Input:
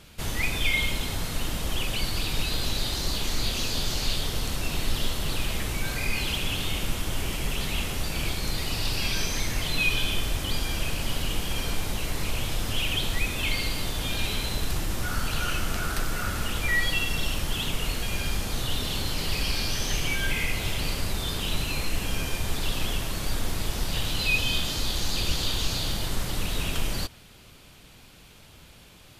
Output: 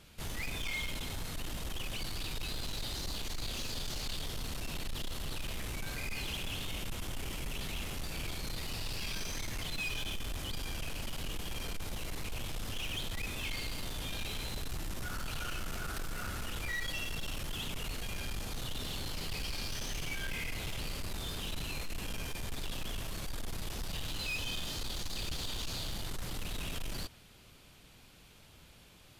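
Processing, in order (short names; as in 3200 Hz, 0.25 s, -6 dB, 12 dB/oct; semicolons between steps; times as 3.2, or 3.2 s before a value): soft clip -25.5 dBFS, distortion -11 dB; gain -7 dB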